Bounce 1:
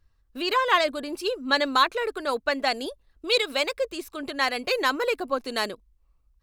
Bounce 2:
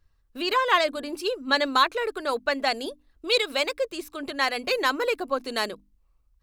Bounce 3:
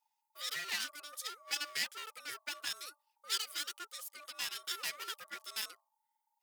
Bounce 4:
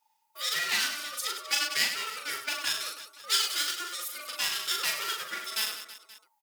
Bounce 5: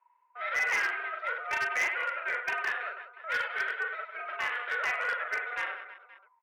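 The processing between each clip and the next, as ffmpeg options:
-af "bandreject=f=50:t=h:w=6,bandreject=f=100:t=h:w=6,bandreject=f=150:t=h:w=6,bandreject=f=200:t=h:w=6,bandreject=f=250:t=h:w=6,bandreject=f=300:t=h:w=6"
-af "aeval=exprs='val(0)*sin(2*PI*880*n/s)':c=same,aeval=exprs='clip(val(0),-1,0.0282)':c=same,aderivative"
-af "aecho=1:1:40|100|190|325|527.5:0.631|0.398|0.251|0.158|0.1,volume=8dB"
-af "highpass=f=300:t=q:w=0.5412,highpass=f=300:t=q:w=1.307,lowpass=f=2.1k:t=q:w=0.5176,lowpass=f=2.1k:t=q:w=0.7071,lowpass=f=2.1k:t=q:w=1.932,afreqshift=91,volume=30dB,asoftclip=hard,volume=-30dB,volume=6.5dB"

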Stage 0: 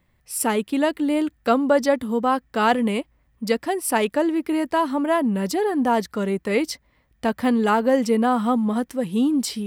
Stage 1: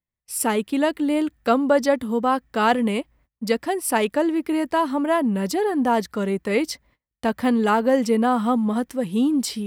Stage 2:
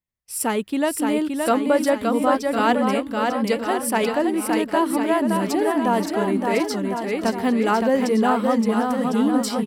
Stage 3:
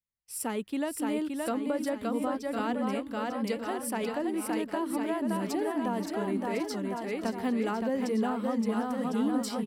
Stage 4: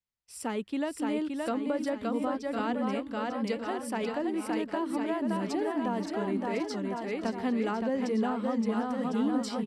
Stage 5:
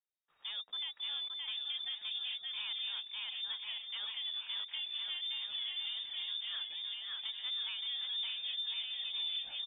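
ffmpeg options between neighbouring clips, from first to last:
-af "agate=range=-27dB:threshold=-54dB:ratio=16:detection=peak"
-af "aecho=1:1:570|1054|1466|1816|2114:0.631|0.398|0.251|0.158|0.1,volume=-1dB"
-filter_complex "[0:a]acrossover=split=360[a][b];[b]acompressor=threshold=-23dB:ratio=4[c];[a][c]amix=inputs=2:normalize=0,volume=-8.5dB"
-af "lowpass=6.9k"
-af "asoftclip=type=tanh:threshold=-24dB,lowpass=f=3.2k:t=q:w=0.5098,lowpass=f=3.2k:t=q:w=0.6013,lowpass=f=3.2k:t=q:w=0.9,lowpass=f=3.2k:t=q:w=2.563,afreqshift=-3800,volume=-8dB"

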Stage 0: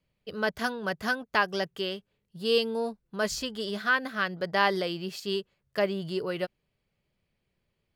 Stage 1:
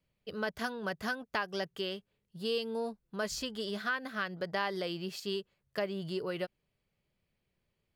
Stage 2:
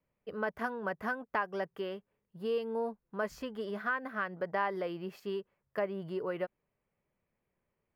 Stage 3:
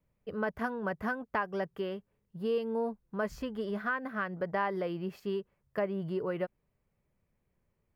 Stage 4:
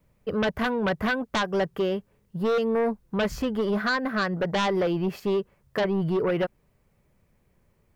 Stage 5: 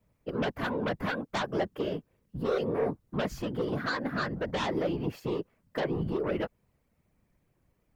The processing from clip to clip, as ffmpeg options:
-af "acompressor=threshold=-29dB:ratio=2.5,volume=-3dB"
-af "equalizer=f=250:t=o:w=1:g=4,equalizer=f=500:t=o:w=1:g=5,equalizer=f=1k:t=o:w=1:g=8,equalizer=f=2k:t=o:w=1:g=5,equalizer=f=4k:t=o:w=1:g=-11,equalizer=f=8k:t=o:w=1:g=-9,volume=-5.5dB"
-af "lowshelf=f=180:g=12"
-af "aeval=exprs='0.126*sin(PI/2*3.16*val(0)/0.126)':c=same,volume=-2dB"
-af "afftfilt=real='hypot(re,im)*cos(2*PI*random(0))':imag='hypot(re,im)*sin(2*PI*random(1))':win_size=512:overlap=0.75"

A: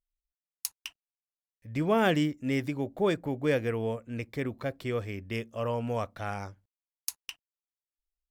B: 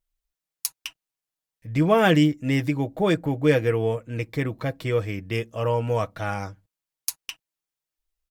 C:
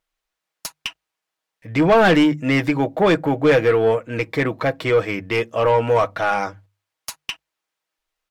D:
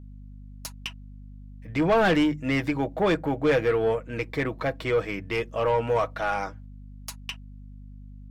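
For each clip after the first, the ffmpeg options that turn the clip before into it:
-af "equalizer=f=99:t=o:w=0.7:g=4,aecho=1:1:6.3:0.52,volume=5.5dB"
-filter_complex "[0:a]bandreject=f=50:t=h:w=6,bandreject=f=100:t=h:w=6,bandreject=f=150:t=h:w=6,asplit=2[a][b];[b]highpass=f=720:p=1,volume=21dB,asoftclip=type=tanh:threshold=-5dB[c];[a][c]amix=inputs=2:normalize=0,lowpass=f=1.9k:p=1,volume=-6dB"
-af "aeval=exprs='val(0)+0.0178*(sin(2*PI*50*n/s)+sin(2*PI*2*50*n/s)/2+sin(2*PI*3*50*n/s)/3+sin(2*PI*4*50*n/s)/4+sin(2*PI*5*50*n/s)/5)':c=same,volume=-7dB"

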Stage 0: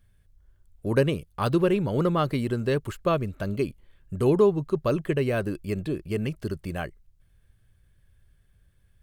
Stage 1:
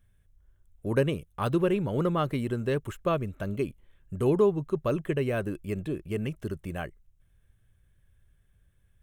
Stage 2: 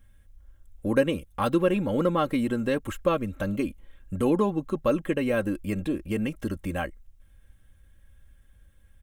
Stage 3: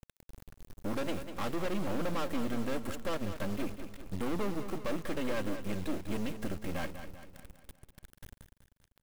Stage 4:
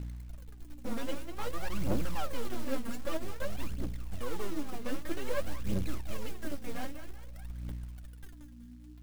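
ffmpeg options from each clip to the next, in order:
-af "equalizer=f=4.6k:t=o:w=0.21:g=-14.5,volume=-3dB"
-filter_complex "[0:a]aecho=1:1:3.7:0.69,asplit=2[a][b];[b]acompressor=threshold=-35dB:ratio=6,volume=0dB[c];[a][c]amix=inputs=2:normalize=0"
-af "asoftclip=type=tanh:threshold=-26dB,acrusher=bits=5:dc=4:mix=0:aa=0.000001,aecho=1:1:196|392|588|784|980|1176:0.316|0.161|0.0823|0.0419|0.0214|0.0109"
-af "aeval=exprs='val(0)+0.00794*(sin(2*PI*60*n/s)+sin(2*PI*2*60*n/s)/2+sin(2*PI*3*60*n/s)/3+sin(2*PI*4*60*n/s)/4+sin(2*PI*5*60*n/s)/5)':c=same,aphaser=in_gain=1:out_gain=1:delay=4.4:decay=0.77:speed=0.52:type=triangular,acrusher=bits=6:mode=log:mix=0:aa=0.000001,volume=-6.5dB"

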